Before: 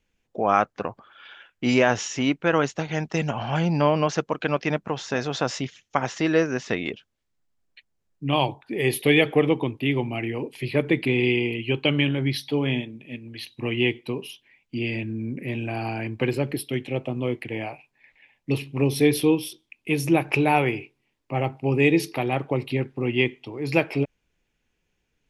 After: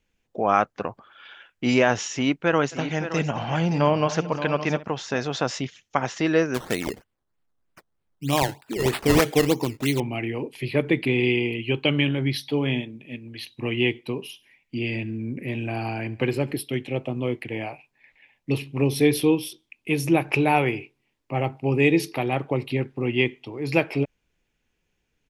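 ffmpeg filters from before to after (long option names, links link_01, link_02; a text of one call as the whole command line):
ffmpeg -i in.wav -filter_complex "[0:a]asplit=3[link_01][link_02][link_03];[link_01]afade=type=out:start_time=2.71:duration=0.02[link_04];[link_02]aecho=1:1:67|231|570:0.126|0.1|0.282,afade=type=in:start_time=2.71:duration=0.02,afade=type=out:start_time=4.85:duration=0.02[link_05];[link_03]afade=type=in:start_time=4.85:duration=0.02[link_06];[link_04][link_05][link_06]amix=inputs=3:normalize=0,asettb=1/sr,asplit=3[link_07][link_08][link_09];[link_07]atrim=end=6.544[link_10];[link_08]atrim=start=6.54:end=10,asetpts=PTS-STARTPTS,afade=type=in:duration=0.004:curve=qsin,afade=type=out:start_time=3.456:duration=0.004:curve=qsin,acrusher=samples=13:mix=1:aa=0.000001:lfo=1:lforange=13:lforate=3.2[link_11];[link_09]atrim=start=9.996[link_12];[link_10][link_11]acrossfade=duration=0.004:curve1=hsin:curve2=qsin[link_13];[link_13][link_12]acrossfade=duration=0.004:curve1=qsin:curve2=hsin,asettb=1/sr,asplit=3[link_14][link_15][link_16];[link_14]atrim=end=14.264[link_17];[link_15]atrim=start=14.26:end=16.52,asetpts=PTS-STARTPTS,afade=type=in:duration=0.004:curve=qsin,afade=type=out:start_time=2.256:duration=0.004:curve=qsin,aecho=1:1:70|140|210:0.0891|0.0419|0.0197,atrim=end_sample=99666[link_18];[link_16]atrim=start=16.516[link_19];[link_17][link_18]acrossfade=duration=0.004:curve1=hsin:curve2=qsin[link_20];[link_20][link_19]acrossfade=duration=0.004:curve1=qsin:curve2=hsin" out.wav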